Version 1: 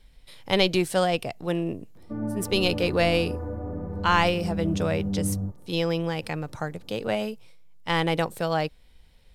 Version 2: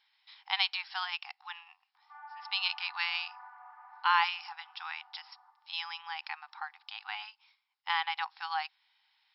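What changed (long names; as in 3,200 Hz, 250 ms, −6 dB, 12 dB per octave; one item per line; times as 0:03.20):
speech −4.0 dB
master: add linear-phase brick-wall band-pass 750–5,500 Hz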